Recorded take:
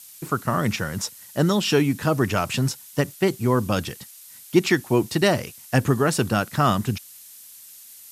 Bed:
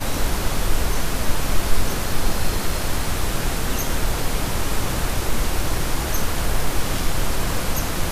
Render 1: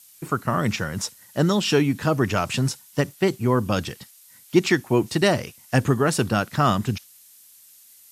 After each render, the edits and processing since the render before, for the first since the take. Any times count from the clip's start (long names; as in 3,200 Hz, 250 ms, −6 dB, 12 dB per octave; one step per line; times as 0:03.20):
noise reduction from a noise print 6 dB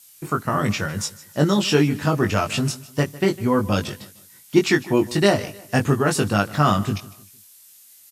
double-tracking delay 20 ms −4 dB
repeating echo 153 ms, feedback 37%, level −19 dB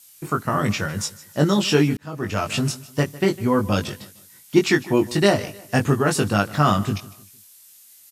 0:01.97–0:02.55: fade in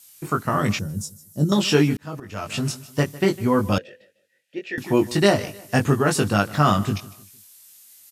0:00.79–0:01.52: drawn EQ curve 200 Hz 0 dB, 2,000 Hz −27 dB, 6,100 Hz −7 dB, 9,800 Hz −1 dB
0:02.20–0:03.06: fade in equal-power, from −16 dB
0:03.78–0:04.78: formant filter e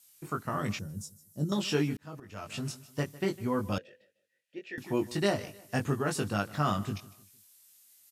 level −11 dB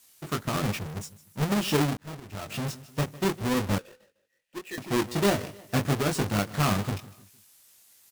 each half-wave held at its own peak